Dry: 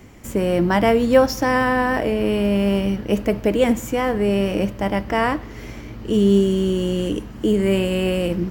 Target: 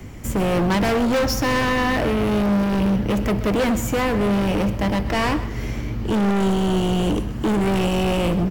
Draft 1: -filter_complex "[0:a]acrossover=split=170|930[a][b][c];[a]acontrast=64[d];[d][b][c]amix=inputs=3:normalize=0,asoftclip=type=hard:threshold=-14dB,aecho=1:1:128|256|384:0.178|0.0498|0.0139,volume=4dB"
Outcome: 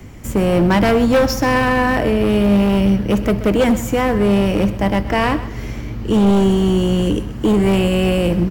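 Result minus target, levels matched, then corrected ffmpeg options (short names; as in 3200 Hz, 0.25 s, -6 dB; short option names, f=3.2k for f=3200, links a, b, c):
hard clip: distortion -6 dB
-filter_complex "[0:a]acrossover=split=170|930[a][b][c];[a]acontrast=64[d];[d][b][c]amix=inputs=3:normalize=0,asoftclip=type=hard:threshold=-21.5dB,aecho=1:1:128|256|384:0.178|0.0498|0.0139,volume=4dB"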